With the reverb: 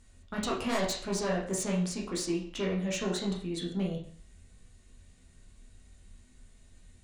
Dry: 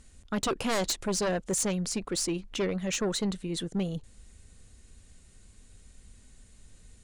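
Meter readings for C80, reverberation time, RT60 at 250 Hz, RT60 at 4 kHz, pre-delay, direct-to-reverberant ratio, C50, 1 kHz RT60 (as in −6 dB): 10.5 dB, 0.50 s, 0.50 s, 0.45 s, 12 ms, −3.0 dB, 6.5 dB, 0.50 s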